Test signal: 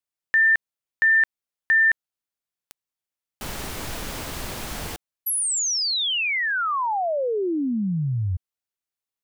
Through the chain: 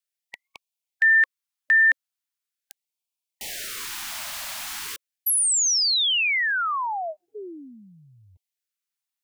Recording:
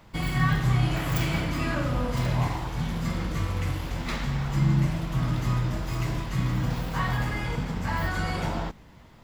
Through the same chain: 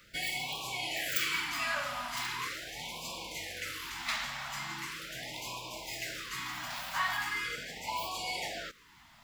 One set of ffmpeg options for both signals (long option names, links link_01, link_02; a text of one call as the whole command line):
ffmpeg -i in.wav -filter_complex "[0:a]tiltshelf=frequency=670:gain=-8.5,acrossover=split=320|2400[link_01][link_02][link_03];[link_01]acompressor=threshold=-47dB:ratio=16:release=928:detection=peak[link_04];[link_04][link_02][link_03]amix=inputs=3:normalize=0,afftfilt=real='re*(1-between(b*sr/1024,380*pow(1600/380,0.5+0.5*sin(2*PI*0.4*pts/sr))/1.41,380*pow(1600/380,0.5+0.5*sin(2*PI*0.4*pts/sr))*1.41))':imag='im*(1-between(b*sr/1024,380*pow(1600/380,0.5+0.5*sin(2*PI*0.4*pts/sr))/1.41,380*pow(1600/380,0.5+0.5*sin(2*PI*0.4*pts/sr))*1.41))':win_size=1024:overlap=0.75,volume=-5.5dB" out.wav